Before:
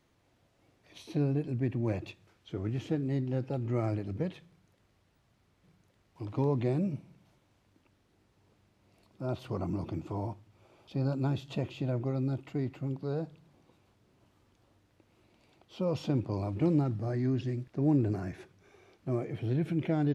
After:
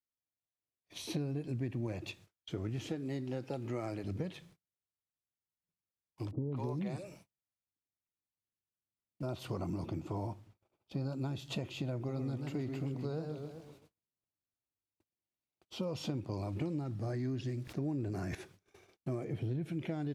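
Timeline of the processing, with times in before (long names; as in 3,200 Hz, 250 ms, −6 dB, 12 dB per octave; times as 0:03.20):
0:01.03–0:01.87: clip gain +3 dB
0:02.89–0:04.04: high-pass filter 260 Hz 6 dB per octave
0:06.31–0:09.23: three-band delay without the direct sound lows, mids, highs 200/250 ms, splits 460/3,600 Hz
0:09.86–0:11.39: one half of a high-frequency compander decoder only
0:11.95–0:15.85: feedback echo with a swinging delay time 130 ms, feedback 50%, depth 183 cents, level −7 dB
0:17.63–0:18.35: level that may fall only so fast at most 32 dB per second
0:19.24–0:19.66: tilt shelving filter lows +4 dB, about 650 Hz
whole clip: noise gate −58 dBFS, range −38 dB; high-shelf EQ 4,100 Hz +9.5 dB; downward compressor, threshold −35 dBFS; level +1 dB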